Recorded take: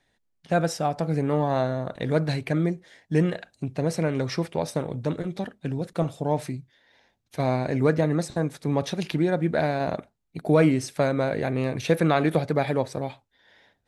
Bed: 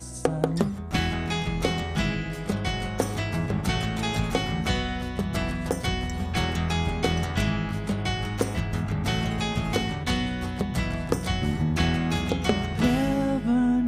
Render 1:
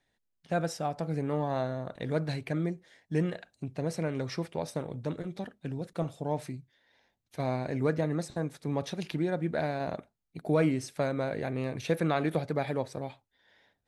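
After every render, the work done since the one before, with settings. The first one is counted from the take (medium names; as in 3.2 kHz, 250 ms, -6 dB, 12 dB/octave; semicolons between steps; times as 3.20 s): trim -7 dB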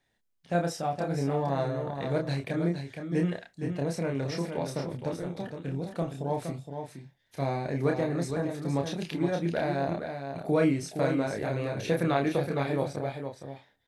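doubling 29 ms -3.5 dB; delay 466 ms -7 dB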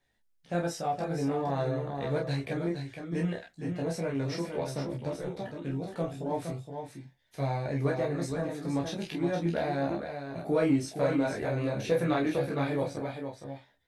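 chorus voices 6, 0.37 Hz, delay 16 ms, depth 2.3 ms; in parallel at -11 dB: saturation -29 dBFS, distortion -11 dB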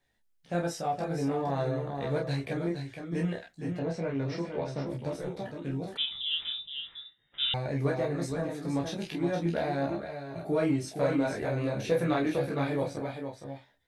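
3.79–4.87 s: distance through air 120 m; 5.97–7.54 s: frequency inversion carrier 3.7 kHz; 9.86–10.87 s: comb of notches 250 Hz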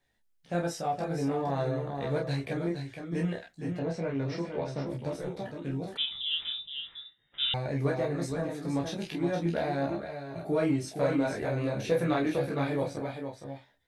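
no audible change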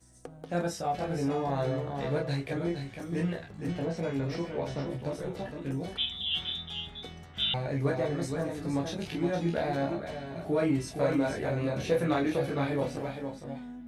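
add bed -21 dB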